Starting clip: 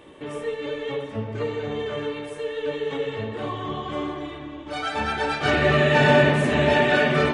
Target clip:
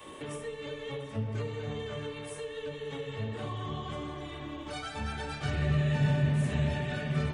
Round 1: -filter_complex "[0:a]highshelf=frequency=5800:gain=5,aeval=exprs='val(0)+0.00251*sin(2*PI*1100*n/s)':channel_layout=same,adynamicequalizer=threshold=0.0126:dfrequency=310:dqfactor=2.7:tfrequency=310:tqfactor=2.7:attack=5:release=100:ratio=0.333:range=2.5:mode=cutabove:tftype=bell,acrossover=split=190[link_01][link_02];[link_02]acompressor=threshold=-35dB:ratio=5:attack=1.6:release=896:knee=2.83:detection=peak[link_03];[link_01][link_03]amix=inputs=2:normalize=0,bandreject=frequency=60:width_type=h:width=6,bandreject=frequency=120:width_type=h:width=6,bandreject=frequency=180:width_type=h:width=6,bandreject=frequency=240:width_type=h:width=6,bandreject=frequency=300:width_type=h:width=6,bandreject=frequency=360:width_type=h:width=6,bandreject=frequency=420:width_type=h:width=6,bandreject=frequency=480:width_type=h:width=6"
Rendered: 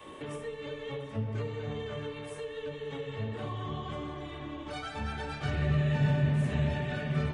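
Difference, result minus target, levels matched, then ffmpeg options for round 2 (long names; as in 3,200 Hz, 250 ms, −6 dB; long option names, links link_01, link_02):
8,000 Hz band −5.5 dB
-filter_complex "[0:a]highshelf=frequency=5800:gain=14.5,aeval=exprs='val(0)+0.00251*sin(2*PI*1100*n/s)':channel_layout=same,adynamicequalizer=threshold=0.0126:dfrequency=310:dqfactor=2.7:tfrequency=310:tqfactor=2.7:attack=5:release=100:ratio=0.333:range=2.5:mode=cutabove:tftype=bell,acrossover=split=190[link_01][link_02];[link_02]acompressor=threshold=-35dB:ratio=5:attack=1.6:release=896:knee=2.83:detection=peak[link_03];[link_01][link_03]amix=inputs=2:normalize=0,bandreject=frequency=60:width_type=h:width=6,bandreject=frequency=120:width_type=h:width=6,bandreject=frequency=180:width_type=h:width=6,bandreject=frequency=240:width_type=h:width=6,bandreject=frequency=300:width_type=h:width=6,bandreject=frequency=360:width_type=h:width=6,bandreject=frequency=420:width_type=h:width=6,bandreject=frequency=480:width_type=h:width=6"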